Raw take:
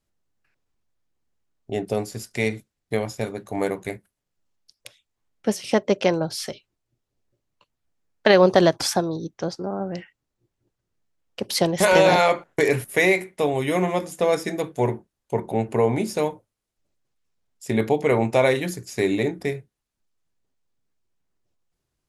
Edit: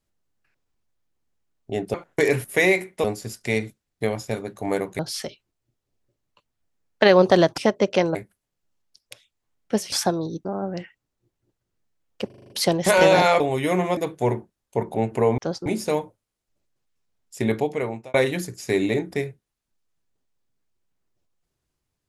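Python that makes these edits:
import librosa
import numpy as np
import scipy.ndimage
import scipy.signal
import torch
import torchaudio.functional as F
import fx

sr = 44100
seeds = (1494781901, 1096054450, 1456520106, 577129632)

y = fx.edit(x, sr, fx.swap(start_s=3.89, length_s=1.77, other_s=6.23, other_length_s=2.59),
    fx.move(start_s=9.35, length_s=0.28, to_s=15.95),
    fx.stutter(start_s=11.44, slice_s=0.04, count=7),
    fx.move(start_s=12.34, length_s=1.1, to_s=1.94),
    fx.cut(start_s=14.01, length_s=0.53),
    fx.fade_out_span(start_s=17.72, length_s=0.71), tone=tone)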